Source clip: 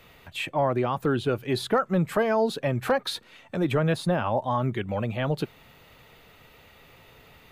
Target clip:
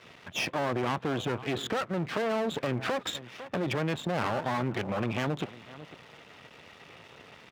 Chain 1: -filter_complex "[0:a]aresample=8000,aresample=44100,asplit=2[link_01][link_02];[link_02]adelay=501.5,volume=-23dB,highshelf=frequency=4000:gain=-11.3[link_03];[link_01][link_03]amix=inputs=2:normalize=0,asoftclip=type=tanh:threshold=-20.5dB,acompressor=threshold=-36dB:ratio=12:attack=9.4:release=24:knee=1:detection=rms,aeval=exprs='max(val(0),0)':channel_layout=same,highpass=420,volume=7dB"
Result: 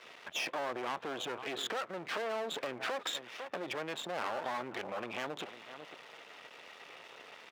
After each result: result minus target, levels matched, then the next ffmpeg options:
125 Hz band −15.0 dB; downward compressor: peak gain reduction +5.5 dB
-filter_complex "[0:a]aresample=8000,aresample=44100,asplit=2[link_01][link_02];[link_02]adelay=501.5,volume=-23dB,highshelf=frequency=4000:gain=-11.3[link_03];[link_01][link_03]amix=inputs=2:normalize=0,asoftclip=type=tanh:threshold=-20.5dB,acompressor=threshold=-36dB:ratio=12:attack=9.4:release=24:knee=1:detection=rms,aeval=exprs='max(val(0),0)':channel_layout=same,highpass=120,volume=7dB"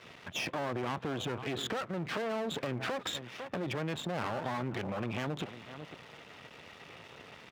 downward compressor: peak gain reduction +5.5 dB
-filter_complex "[0:a]aresample=8000,aresample=44100,asplit=2[link_01][link_02];[link_02]adelay=501.5,volume=-23dB,highshelf=frequency=4000:gain=-11.3[link_03];[link_01][link_03]amix=inputs=2:normalize=0,asoftclip=type=tanh:threshold=-20.5dB,acompressor=threshold=-30dB:ratio=12:attack=9.4:release=24:knee=1:detection=rms,aeval=exprs='max(val(0),0)':channel_layout=same,highpass=120,volume=7dB"

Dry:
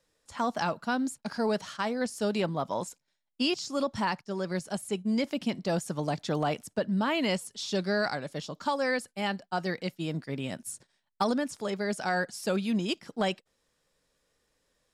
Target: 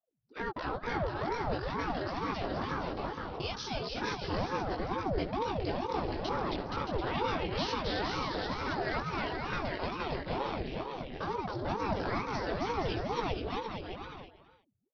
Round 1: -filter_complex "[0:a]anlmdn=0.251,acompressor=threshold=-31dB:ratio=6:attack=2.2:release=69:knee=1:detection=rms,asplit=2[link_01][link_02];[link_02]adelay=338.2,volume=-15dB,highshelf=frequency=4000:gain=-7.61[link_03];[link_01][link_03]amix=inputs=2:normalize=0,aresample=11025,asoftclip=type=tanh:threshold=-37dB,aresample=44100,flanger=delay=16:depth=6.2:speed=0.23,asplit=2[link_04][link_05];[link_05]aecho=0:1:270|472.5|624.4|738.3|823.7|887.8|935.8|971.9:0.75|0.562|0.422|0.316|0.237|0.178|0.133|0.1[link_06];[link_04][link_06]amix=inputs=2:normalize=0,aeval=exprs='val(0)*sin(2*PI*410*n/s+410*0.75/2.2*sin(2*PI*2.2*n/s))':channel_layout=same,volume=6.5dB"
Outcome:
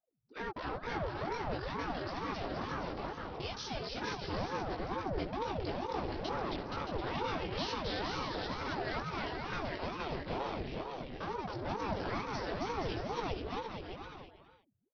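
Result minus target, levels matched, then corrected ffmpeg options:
soft clipping: distortion +10 dB
-filter_complex "[0:a]anlmdn=0.251,acompressor=threshold=-31dB:ratio=6:attack=2.2:release=69:knee=1:detection=rms,asplit=2[link_01][link_02];[link_02]adelay=338.2,volume=-15dB,highshelf=frequency=4000:gain=-7.61[link_03];[link_01][link_03]amix=inputs=2:normalize=0,aresample=11025,asoftclip=type=tanh:threshold=-29dB,aresample=44100,flanger=delay=16:depth=6.2:speed=0.23,asplit=2[link_04][link_05];[link_05]aecho=0:1:270|472.5|624.4|738.3|823.7|887.8|935.8|971.9:0.75|0.562|0.422|0.316|0.237|0.178|0.133|0.1[link_06];[link_04][link_06]amix=inputs=2:normalize=0,aeval=exprs='val(0)*sin(2*PI*410*n/s+410*0.75/2.2*sin(2*PI*2.2*n/s))':channel_layout=same,volume=6.5dB"

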